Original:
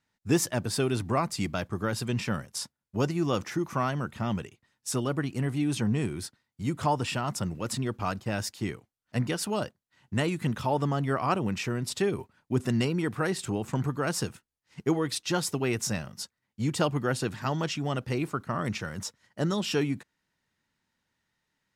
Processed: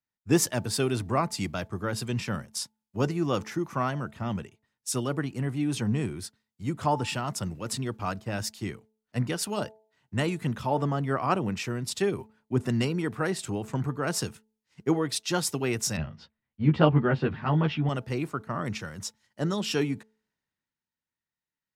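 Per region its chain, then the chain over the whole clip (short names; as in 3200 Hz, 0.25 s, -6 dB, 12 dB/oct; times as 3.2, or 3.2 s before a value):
15.97–17.89 LPF 3400 Hz 24 dB/oct + low shelf 150 Hz +6.5 dB + doubler 13 ms -3 dB
whole clip: de-hum 217.9 Hz, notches 4; three-band expander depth 40%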